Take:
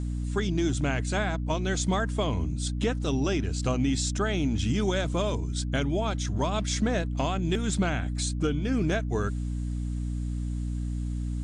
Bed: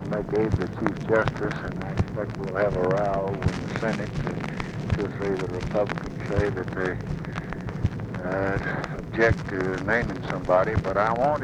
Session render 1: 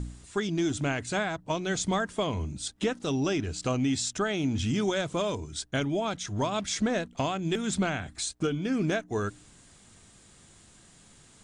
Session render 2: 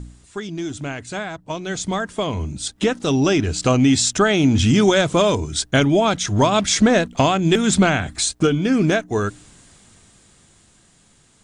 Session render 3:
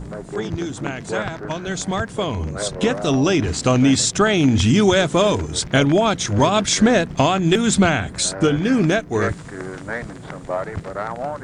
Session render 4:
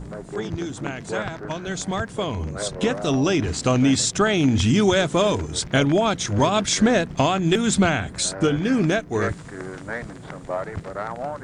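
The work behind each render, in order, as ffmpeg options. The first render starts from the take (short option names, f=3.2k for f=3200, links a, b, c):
-af "bandreject=f=60:t=h:w=4,bandreject=f=120:t=h:w=4,bandreject=f=180:t=h:w=4,bandreject=f=240:t=h:w=4,bandreject=f=300:t=h:w=4"
-af "dynaudnorm=f=500:g=11:m=14dB"
-filter_complex "[1:a]volume=-4.5dB[a];[0:a][a]amix=inputs=2:normalize=0"
-af "volume=-3dB"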